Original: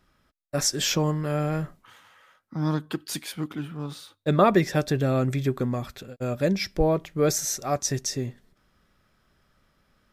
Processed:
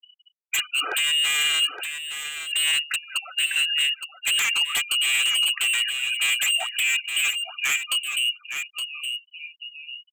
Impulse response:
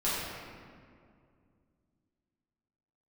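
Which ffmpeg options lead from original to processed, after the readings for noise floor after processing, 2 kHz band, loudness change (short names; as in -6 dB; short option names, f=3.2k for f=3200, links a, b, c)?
-66 dBFS, +14.5 dB, +4.0 dB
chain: -filter_complex "[0:a]asplit=2[a][b];[b]adelay=851,lowpass=f=810:p=1,volume=-22.5dB,asplit=2[c][d];[d]adelay=851,lowpass=f=810:p=1,volume=0.53,asplit=2[e][f];[f]adelay=851,lowpass=f=810:p=1,volume=0.53,asplit=2[g][h];[h]adelay=851,lowpass=f=810:p=1,volume=0.53[i];[c][e][g][i]amix=inputs=4:normalize=0[j];[a][j]amix=inputs=2:normalize=0,lowpass=f=2.6k:t=q:w=0.5098,lowpass=f=2.6k:t=q:w=0.6013,lowpass=f=2.6k:t=q:w=0.9,lowpass=f=2.6k:t=q:w=2.563,afreqshift=-3000,highpass=f=230:w=0.5412,highpass=f=230:w=1.3066,acompressor=mode=upward:threshold=-42dB:ratio=2.5,equalizer=f=2k:t=o:w=2.3:g=15,acompressor=threshold=-14dB:ratio=12,bandreject=f=1.1k:w=19,afftfilt=real='re*gte(hypot(re,im),0.0631)':imag='im*gte(hypot(re,im),0.0631)':win_size=1024:overlap=0.75,aecho=1:1:2.5:0.59,aeval=exprs='0.178*(abs(mod(val(0)/0.178+3,4)-2)-1)':c=same,asplit=2[k][l];[l]aecho=0:1:867:0.376[m];[k][m]amix=inputs=2:normalize=0,volume=-2.5dB"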